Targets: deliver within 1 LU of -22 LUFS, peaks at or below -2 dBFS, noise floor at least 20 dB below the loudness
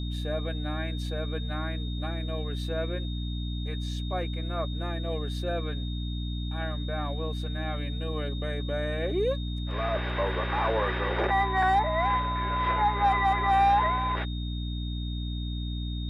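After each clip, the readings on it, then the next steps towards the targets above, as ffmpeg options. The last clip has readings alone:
hum 60 Hz; highest harmonic 300 Hz; hum level -30 dBFS; steady tone 3.7 kHz; tone level -42 dBFS; loudness -29.0 LUFS; peak level -13.5 dBFS; loudness target -22.0 LUFS
-> -af "bandreject=f=60:t=h:w=4,bandreject=f=120:t=h:w=4,bandreject=f=180:t=h:w=4,bandreject=f=240:t=h:w=4,bandreject=f=300:t=h:w=4"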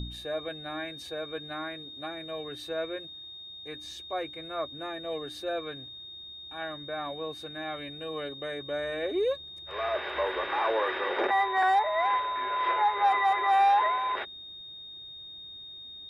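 hum not found; steady tone 3.7 kHz; tone level -42 dBFS
-> -af "bandreject=f=3700:w=30"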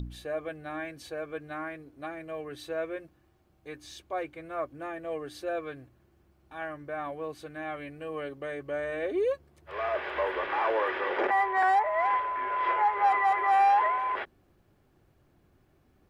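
steady tone not found; loudness -30.0 LUFS; peak level -15.5 dBFS; loudness target -22.0 LUFS
-> -af "volume=2.51"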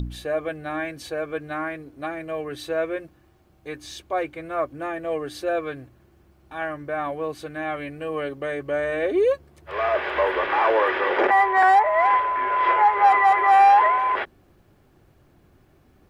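loudness -22.0 LUFS; peak level -7.5 dBFS; noise floor -58 dBFS

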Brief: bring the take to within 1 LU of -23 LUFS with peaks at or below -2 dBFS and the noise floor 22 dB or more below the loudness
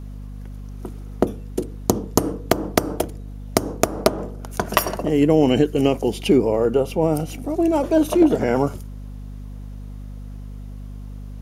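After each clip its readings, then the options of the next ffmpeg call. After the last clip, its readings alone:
hum 50 Hz; highest harmonic 250 Hz; hum level -31 dBFS; loudness -20.5 LUFS; peak level -2.0 dBFS; loudness target -23.0 LUFS
-> -af "bandreject=f=50:t=h:w=4,bandreject=f=100:t=h:w=4,bandreject=f=150:t=h:w=4,bandreject=f=200:t=h:w=4,bandreject=f=250:t=h:w=4"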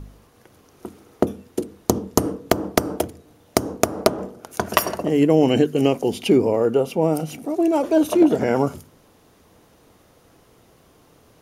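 hum not found; loudness -21.0 LUFS; peak level -2.0 dBFS; loudness target -23.0 LUFS
-> -af "volume=0.794"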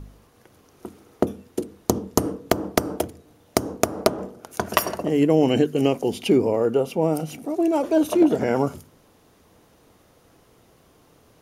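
loudness -23.0 LUFS; peak level -4.0 dBFS; noise floor -57 dBFS

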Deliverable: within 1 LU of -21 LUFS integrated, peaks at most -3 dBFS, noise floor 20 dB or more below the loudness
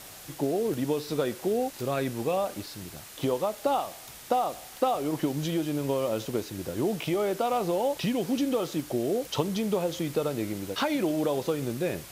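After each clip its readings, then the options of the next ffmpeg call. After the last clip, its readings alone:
noise floor -46 dBFS; noise floor target -49 dBFS; loudness -29.0 LUFS; peak level -11.5 dBFS; loudness target -21.0 LUFS
-> -af "afftdn=nr=6:nf=-46"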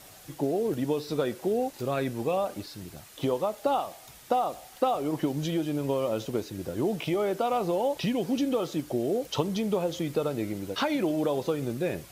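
noise floor -50 dBFS; loudness -29.0 LUFS; peak level -11.5 dBFS; loudness target -21.0 LUFS
-> -af "volume=2.51"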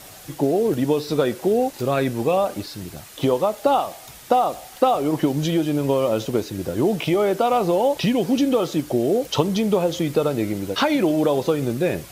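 loudness -21.0 LUFS; peak level -3.5 dBFS; noise floor -42 dBFS

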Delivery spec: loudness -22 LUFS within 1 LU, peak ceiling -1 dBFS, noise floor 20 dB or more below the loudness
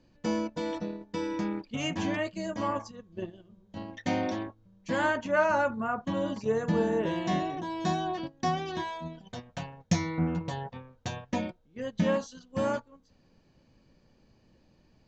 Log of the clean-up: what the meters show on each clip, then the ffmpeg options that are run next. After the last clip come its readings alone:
loudness -31.5 LUFS; peak level -13.0 dBFS; loudness target -22.0 LUFS
-> -af "volume=2.99"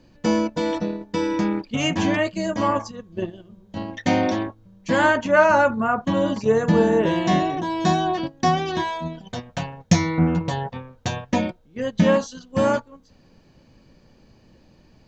loudness -22.0 LUFS; peak level -3.5 dBFS; noise floor -55 dBFS

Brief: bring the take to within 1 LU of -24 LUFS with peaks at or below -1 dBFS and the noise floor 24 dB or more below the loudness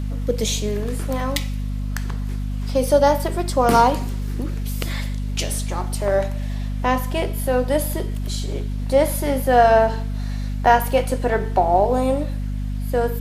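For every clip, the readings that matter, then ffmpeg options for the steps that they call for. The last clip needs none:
hum 50 Hz; highest harmonic 250 Hz; hum level -22 dBFS; loudness -21.0 LUFS; peak level -2.0 dBFS; loudness target -24.0 LUFS
-> -af "bandreject=f=50:t=h:w=4,bandreject=f=100:t=h:w=4,bandreject=f=150:t=h:w=4,bandreject=f=200:t=h:w=4,bandreject=f=250:t=h:w=4"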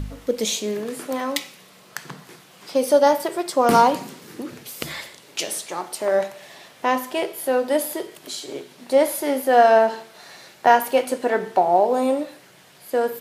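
hum not found; loudness -21.0 LUFS; peak level -2.0 dBFS; loudness target -24.0 LUFS
-> -af "volume=0.708"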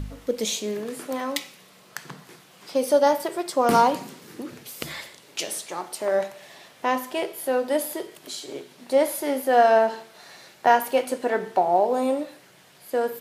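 loudness -24.0 LUFS; peak level -5.0 dBFS; noise floor -53 dBFS

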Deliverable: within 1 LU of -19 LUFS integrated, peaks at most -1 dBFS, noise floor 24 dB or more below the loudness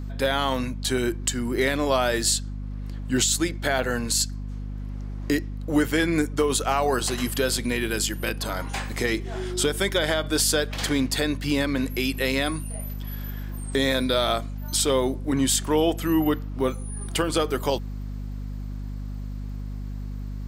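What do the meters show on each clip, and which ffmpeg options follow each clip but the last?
hum 50 Hz; highest harmonic 250 Hz; hum level -30 dBFS; loudness -24.5 LUFS; peak level -9.5 dBFS; loudness target -19.0 LUFS
-> -af "bandreject=f=50:t=h:w=4,bandreject=f=100:t=h:w=4,bandreject=f=150:t=h:w=4,bandreject=f=200:t=h:w=4,bandreject=f=250:t=h:w=4"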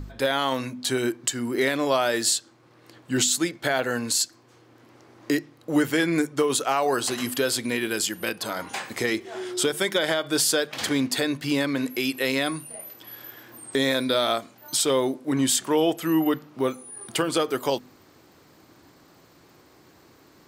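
hum not found; loudness -24.5 LUFS; peak level -9.0 dBFS; loudness target -19.0 LUFS
-> -af "volume=1.88"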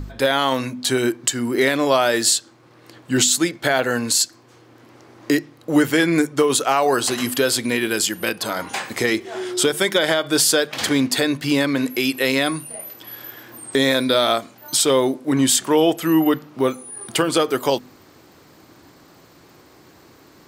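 loudness -19.0 LUFS; peak level -3.5 dBFS; noise floor -50 dBFS

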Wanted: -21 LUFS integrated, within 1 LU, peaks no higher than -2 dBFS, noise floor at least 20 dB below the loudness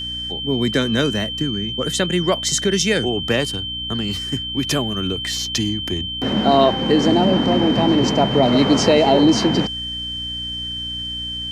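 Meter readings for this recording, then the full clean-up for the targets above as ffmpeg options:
hum 60 Hz; highest harmonic 300 Hz; hum level -33 dBFS; steady tone 3.1 kHz; tone level -25 dBFS; loudness -18.5 LUFS; peak level -2.5 dBFS; loudness target -21.0 LUFS
-> -af "bandreject=f=60:t=h:w=4,bandreject=f=120:t=h:w=4,bandreject=f=180:t=h:w=4,bandreject=f=240:t=h:w=4,bandreject=f=300:t=h:w=4"
-af "bandreject=f=3100:w=30"
-af "volume=0.75"

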